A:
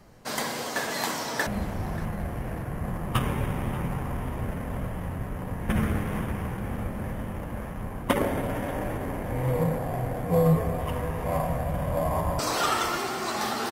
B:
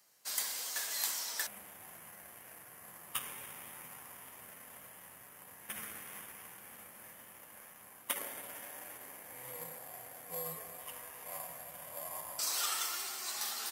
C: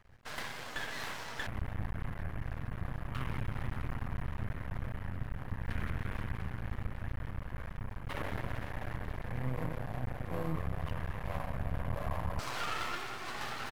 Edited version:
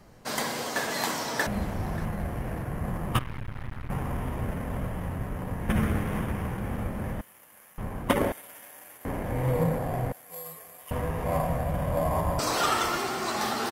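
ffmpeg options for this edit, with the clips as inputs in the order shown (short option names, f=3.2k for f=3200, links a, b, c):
-filter_complex "[1:a]asplit=3[a][b][c];[0:a]asplit=5[d][e][f][g][h];[d]atrim=end=3.192[i];[2:a]atrim=start=3.188:end=3.902[j];[e]atrim=start=3.898:end=7.212[k];[a]atrim=start=7.208:end=7.782[l];[f]atrim=start=7.778:end=8.322[m];[b]atrim=start=8.318:end=9.052[n];[g]atrim=start=9.048:end=10.122[o];[c]atrim=start=10.118:end=10.912[p];[h]atrim=start=10.908[q];[i][j]acrossfade=d=0.004:c1=hsin:c2=hsin[r];[r][k]acrossfade=d=0.004:c1=hsin:c2=hsin[s];[s][l]acrossfade=d=0.004:c1=hsin:c2=hsin[t];[t][m]acrossfade=d=0.004:c1=hsin:c2=hsin[u];[u][n]acrossfade=d=0.004:c1=hsin:c2=hsin[v];[v][o]acrossfade=d=0.004:c1=hsin:c2=hsin[w];[w][p]acrossfade=d=0.004:c1=hsin:c2=hsin[x];[x][q]acrossfade=d=0.004:c1=hsin:c2=hsin"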